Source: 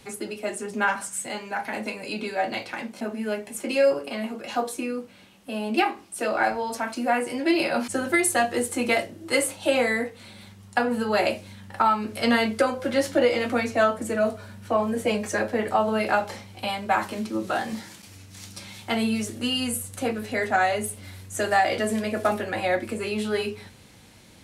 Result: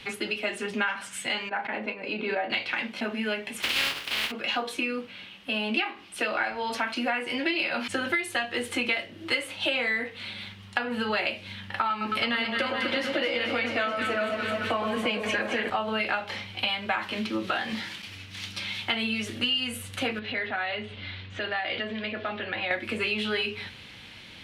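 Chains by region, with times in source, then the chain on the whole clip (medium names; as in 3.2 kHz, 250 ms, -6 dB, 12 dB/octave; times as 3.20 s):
1.49–2.50 s: expander -30 dBFS + band-pass filter 460 Hz, Q 0.57 + swell ahead of each attack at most 59 dB/s
3.61–4.30 s: spectral contrast reduction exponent 0.19 + overload inside the chain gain 8 dB
11.90–15.70 s: echo whose repeats swap between lows and highs 108 ms, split 1.2 kHz, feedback 78%, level -5.5 dB + three bands compressed up and down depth 40%
20.19–22.71 s: Chebyshev low-pass 4 kHz, order 3 + compression 2:1, threshold -38 dBFS
whole clip: FFT filter 700 Hz 0 dB, 3.1 kHz +14 dB, 7.4 kHz -7 dB; compression 6:1, threshold -25 dBFS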